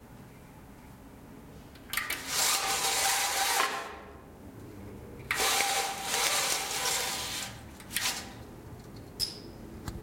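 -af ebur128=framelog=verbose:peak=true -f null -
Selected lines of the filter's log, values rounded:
Integrated loudness:
  I:         -28.7 LUFS
  Threshold: -41.0 LUFS
Loudness range:
  LRA:         3.4 LU
  Threshold: -49.9 LUFS
  LRA low:   -32.5 LUFS
  LRA high:  -29.1 LUFS
True peak:
  Peak:      -10.8 dBFS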